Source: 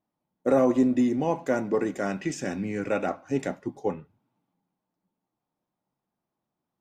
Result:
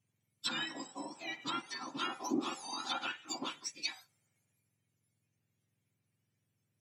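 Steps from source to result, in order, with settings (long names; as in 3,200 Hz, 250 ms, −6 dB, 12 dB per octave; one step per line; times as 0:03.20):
frequency axis turned over on the octave scale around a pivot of 1,400 Hz
high-shelf EQ 3,800 Hz +4 dB
treble cut that deepens with the level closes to 1,400 Hz, closed at −26.5 dBFS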